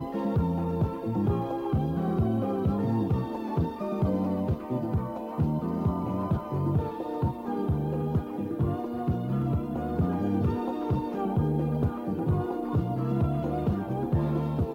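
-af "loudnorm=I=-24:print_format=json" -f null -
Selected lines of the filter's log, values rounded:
"input_i" : "-28.9",
"input_tp" : "-15.2",
"input_lra" : "1.4",
"input_thresh" : "-38.9",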